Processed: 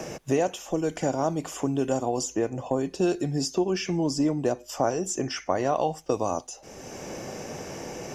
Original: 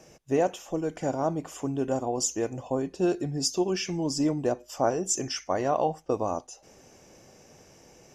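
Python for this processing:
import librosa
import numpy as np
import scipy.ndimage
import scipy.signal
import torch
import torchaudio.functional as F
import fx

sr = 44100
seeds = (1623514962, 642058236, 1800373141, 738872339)

y = fx.band_squash(x, sr, depth_pct=70)
y = y * 10.0 ** (1.5 / 20.0)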